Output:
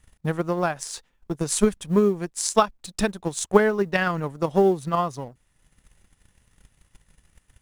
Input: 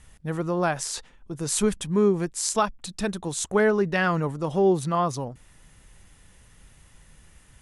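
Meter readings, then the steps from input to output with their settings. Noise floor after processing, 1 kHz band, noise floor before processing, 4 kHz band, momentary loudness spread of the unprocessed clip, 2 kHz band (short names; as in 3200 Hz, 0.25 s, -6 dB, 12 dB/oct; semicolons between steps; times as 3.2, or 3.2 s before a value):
-67 dBFS, +1.5 dB, -55 dBFS, +0.5 dB, 11 LU, +0.5 dB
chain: G.711 law mismatch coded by A; transient shaper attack +10 dB, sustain -4 dB; gain -1.5 dB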